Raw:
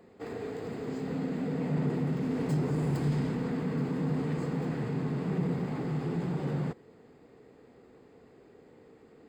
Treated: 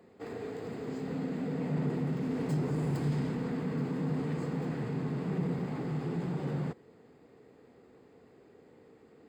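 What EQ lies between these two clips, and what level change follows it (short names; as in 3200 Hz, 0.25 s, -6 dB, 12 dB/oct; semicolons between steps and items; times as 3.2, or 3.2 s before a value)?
HPF 57 Hz; -2.0 dB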